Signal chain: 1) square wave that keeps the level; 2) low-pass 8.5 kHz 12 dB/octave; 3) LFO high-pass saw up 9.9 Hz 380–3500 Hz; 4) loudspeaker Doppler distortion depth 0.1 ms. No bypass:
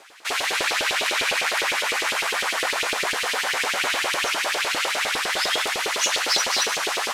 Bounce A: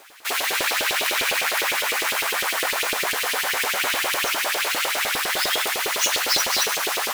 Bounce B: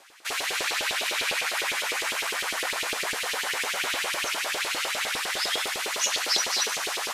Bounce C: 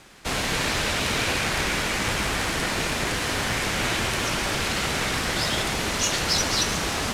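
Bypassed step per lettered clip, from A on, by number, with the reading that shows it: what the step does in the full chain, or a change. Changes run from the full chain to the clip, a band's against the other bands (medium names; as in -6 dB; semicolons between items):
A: 2, 8 kHz band +2.0 dB; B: 1, distortion -4 dB; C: 3, 250 Hz band +12.5 dB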